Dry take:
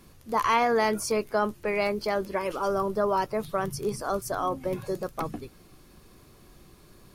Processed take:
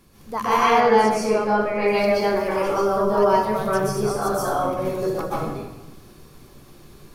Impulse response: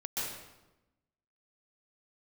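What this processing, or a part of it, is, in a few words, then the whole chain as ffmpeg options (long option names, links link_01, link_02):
bathroom: -filter_complex "[1:a]atrim=start_sample=2205[link_01];[0:a][link_01]afir=irnorm=-1:irlink=0,asettb=1/sr,asplit=3[link_02][link_03][link_04];[link_02]atrim=end=0.804[link_05];[link_03]atrim=start=0.8:end=1.88,asetpts=PTS-STARTPTS,afade=type=in:duration=0.004:curve=qsin,afade=type=out:start_time=1.076:duration=0.004:curve=qsin,highshelf=frequency=6700:gain=-12[link_06];[link_04]atrim=start=1.876[link_07];[link_05][link_06]acrossfade=duration=0.004:curve1=hsin:curve2=qsin[link_08];[link_08][link_07]acrossfade=duration=0.004:curve1=qsin:curve2=hsin,volume=2.5dB"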